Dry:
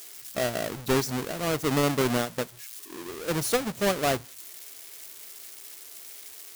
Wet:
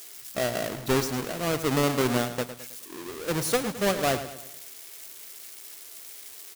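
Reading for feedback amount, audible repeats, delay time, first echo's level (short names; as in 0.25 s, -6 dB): 45%, 4, 0.107 s, -11.5 dB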